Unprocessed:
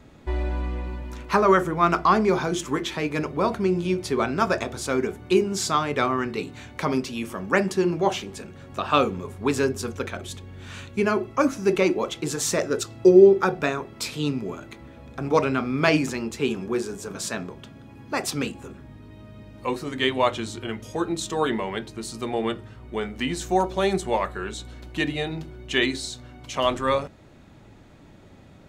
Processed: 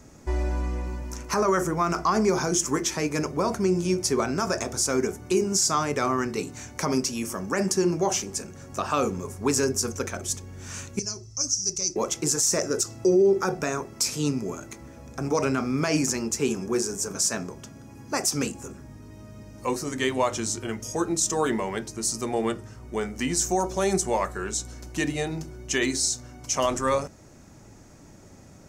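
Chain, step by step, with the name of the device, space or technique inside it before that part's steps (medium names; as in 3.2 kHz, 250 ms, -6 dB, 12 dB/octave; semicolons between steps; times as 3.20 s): 10.99–11.96 s: FFT filter 110 Hz 0 dB, 220 Hz -19 dB, 1.6 kHz -23 dB, 3.1 kHz -16 dB, 5.5 kHz +9 dB, 12 kHz -16 dB; over-bright horn tweeter (resonant high shelf 4.6 kHz +8 dB, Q 3; peak limiter -13 dBFS, peak gain reduction 10.5 dB)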